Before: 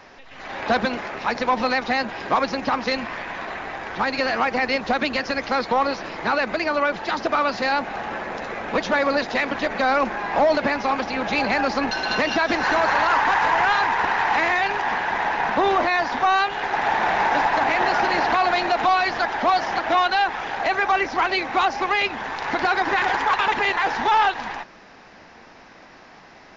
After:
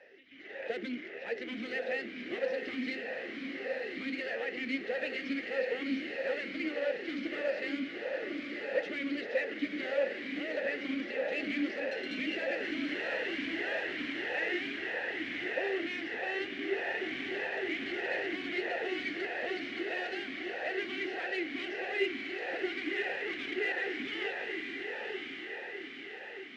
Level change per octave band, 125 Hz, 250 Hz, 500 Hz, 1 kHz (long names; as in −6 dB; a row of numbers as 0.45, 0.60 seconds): −19.0, −8.0, −10.0, −27.0 decibels